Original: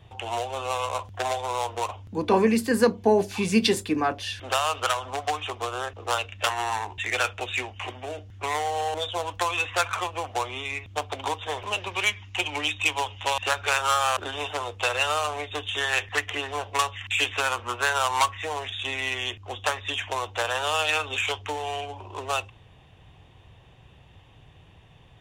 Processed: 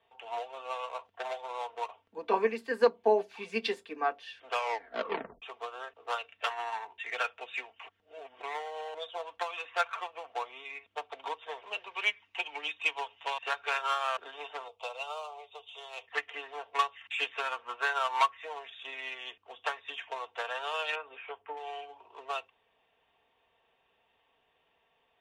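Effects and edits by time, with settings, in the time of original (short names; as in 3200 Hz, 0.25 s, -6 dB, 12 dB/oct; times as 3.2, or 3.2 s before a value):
4.48 tape stop 0.94 s
7.88–8.42 reverse
14.68–16.08 fixed phaser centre 710 Hz, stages 4
20.95–21.57 Gaussian blur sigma 3.7 samples
whole clip: three-band isolator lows -24 dB, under 360 Hz, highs -17 dB, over 3900 Hz; comb 4.4 ms, depth 50%; upward expander 1.5:1, over -34 dBFS; gain -3 dB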